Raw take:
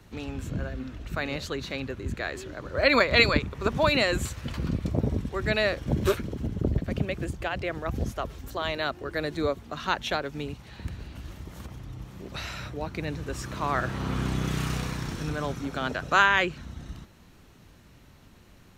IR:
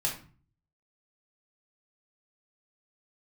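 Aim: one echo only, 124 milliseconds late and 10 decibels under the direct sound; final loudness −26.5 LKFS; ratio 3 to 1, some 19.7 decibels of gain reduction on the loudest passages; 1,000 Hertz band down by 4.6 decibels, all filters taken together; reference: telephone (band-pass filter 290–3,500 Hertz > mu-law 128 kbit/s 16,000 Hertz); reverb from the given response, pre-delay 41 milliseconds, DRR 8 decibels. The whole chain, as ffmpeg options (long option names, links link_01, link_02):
-filter_complex "[0:a]equalizer=frequency=1000:width_type=o:gain=-6,acompressor=threshold=-44dB:ratio=3,aecho=1:1:124:0.316,asplit=2[link_01][link_02];[1:a]atrim=start_sample=2205,adelay=41[link_03];[link_02][link_03]afir=irnorm=-1:irlink=0,volume=-14dB[link_04];[link_01][link_04]amix=inputs=2:normalize=0,highpass=290,lowpass=3500,volume=19.5dB" -ar 16000 -c:a pcm_mulaw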